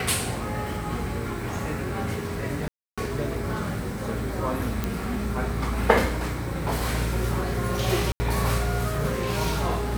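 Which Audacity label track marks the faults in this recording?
2.680000	2.980000	dropout 296 ms
4.840000	4.840000	pop
8.120000	8.200000	dropout 80 ms

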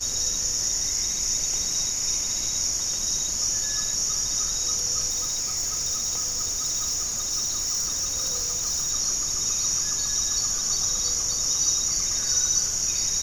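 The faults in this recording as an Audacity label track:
5.090000	8.920000	clipped -22.5 dBFS

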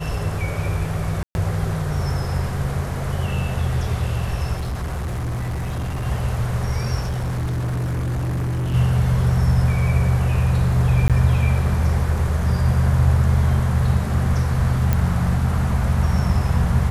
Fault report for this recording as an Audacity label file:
1.230000	1.350000	dropout 121 ms
4.560000	6.050000	clipped -22 dBFS
6.990000	8.750000	clipped -20.5 dBFS
11.080000	11.100000	dropout 17 ms
14.930000	14.930000	pop -7 dBFS

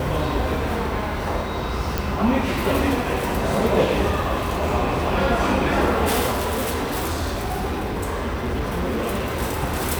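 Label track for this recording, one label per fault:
1.980000	1.980000	pop
6.310000	9.370000	clipped -20 dBFS

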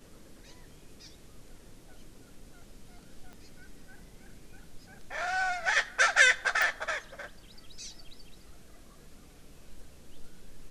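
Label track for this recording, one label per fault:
3.330000	3.330000	pop -34 dBFS
6.620000	6.620000	pop

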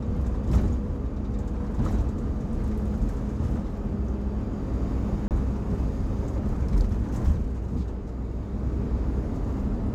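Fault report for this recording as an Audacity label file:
5.280000	5.310000	dropout 28 ms

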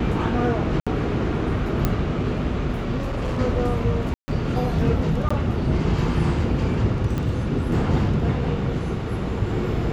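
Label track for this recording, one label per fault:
0.800000	0.870000	dropout 66 ms
1.850000	1.850000	pop -7 dBFS
2.970000	3.390000	clipped -22 dBFS
4.140000	4.280000	dropout 140 ms
5.290000	5.300000	dropout 15 ms
7.180000	7.180000	pop -15 dBFS

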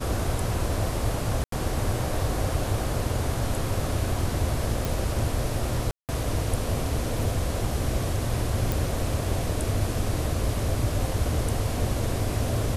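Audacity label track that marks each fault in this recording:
1.440000	1.520000	dropout 83 ms
4.850000	4.850000	pop
5.910000	6.090000	dropout 178 ms
8.720000	8.720000	pop

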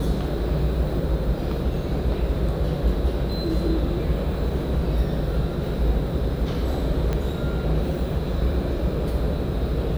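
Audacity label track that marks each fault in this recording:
7.130000	7.130000	pop -13 dBFS

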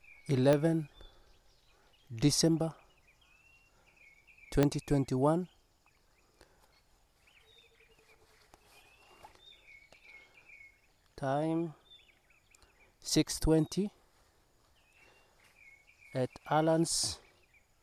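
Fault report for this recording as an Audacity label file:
0.530000	0.530000	pop -16 dBFS
4.630000	4.630000	pop -13 dBFS

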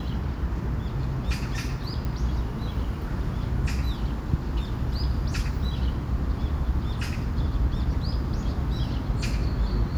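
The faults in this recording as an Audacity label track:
2.050000	2.050000	pop -20 dBFS

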